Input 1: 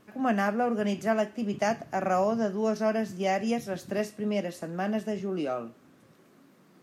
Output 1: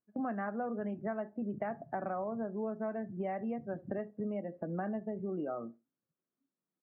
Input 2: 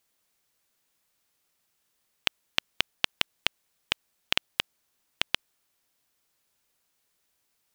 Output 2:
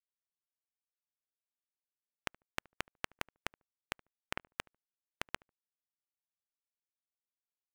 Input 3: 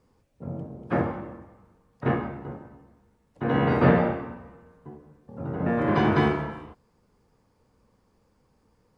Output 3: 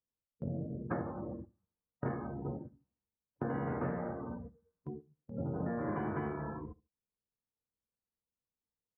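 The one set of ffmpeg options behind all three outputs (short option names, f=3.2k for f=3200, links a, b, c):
-filter_complex "[0:a]afftdn=nr=26:nf=-37,lowpass=f=1.9k:w=0.5412,lowpass=f=1.9k:w=1.3066,agate=range=-12dB:threshold=-48dB:ratio=16:detection=peak,acompressor=threshold=-36dB:ratio=8,asplit=2[a][b];[b]adelay=73,lowpass=f=990:p=1,volume=-21.5dB,asplit=2[c][d];[d]adelay=73,lowpass=f=990:p=1,volume=0.21[e];[a][c][e]amix=inputs=3:normalize=0,volume=2dB"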